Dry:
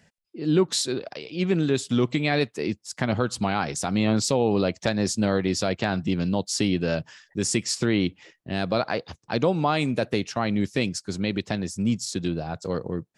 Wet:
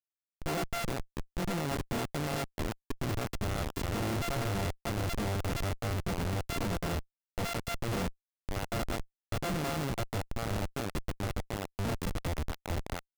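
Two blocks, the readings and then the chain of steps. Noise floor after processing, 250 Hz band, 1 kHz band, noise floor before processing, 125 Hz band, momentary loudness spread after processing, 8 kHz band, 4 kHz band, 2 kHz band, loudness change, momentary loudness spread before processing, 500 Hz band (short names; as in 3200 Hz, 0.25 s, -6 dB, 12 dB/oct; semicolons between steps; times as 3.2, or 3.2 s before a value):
under -85 dBFS, -13.0 dB, -7.0 dB, -70 dBFS, -6.0 dB, 6 LU, -12.0 dB, -10.5 dB, -8.0 dB, -10.0 dB, 8 LU, -11.5 dB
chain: sample sorter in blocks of 64 samples; Schmitt trigger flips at -24.5 dBFS; gain -6 dB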